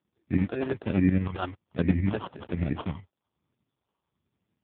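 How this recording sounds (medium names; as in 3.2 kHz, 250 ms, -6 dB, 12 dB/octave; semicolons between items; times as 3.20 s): tremolo saw up 11 Hz, depth 70%; phasing stages 2, 1.2 Hz, lowest notch 170–1600 Hz; aliases and images of a low sample rate 2.1 kHz, jitter 0%; AMR-NB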